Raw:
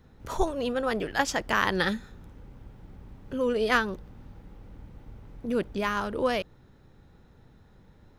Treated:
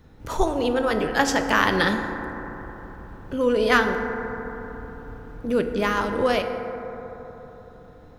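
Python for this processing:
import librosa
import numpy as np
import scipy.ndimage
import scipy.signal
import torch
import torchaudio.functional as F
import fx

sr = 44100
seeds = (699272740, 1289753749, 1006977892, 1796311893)

y = fx.rev_fdn(x, sr, rt60_s=4.0, lf_ratio=1.0, hf_ratio=0.25, size_ms=20.0, drr_db=5.0)
y = y * 10.0 ** (4.5 / 20.0)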